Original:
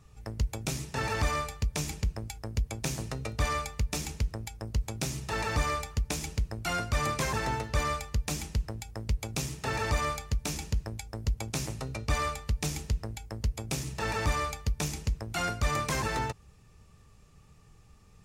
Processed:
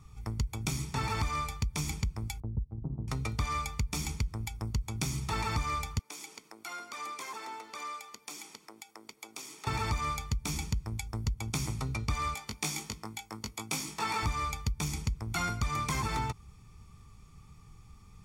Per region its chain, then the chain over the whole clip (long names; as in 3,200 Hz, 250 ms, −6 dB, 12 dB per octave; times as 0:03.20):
0:02.40–0:03.08: downward compressor 2 to 1, threshold −37 dBFS + Gaussian smoothing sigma 13 samples + transient designer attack +5 dB, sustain −9 dB
0:05.99–0:09.67: high-pass filter 320 Hz 24 dB per octave + downward compressor 2 to 1, threshold −48 dBFS
0:12.34–0:14.23: high-pass filter 290 Hz + double-tracking delay 19 ms −4 dB
whole clip: comb filter 0.9 ms, depth 63%; downward compressor, threshold −28 dBFS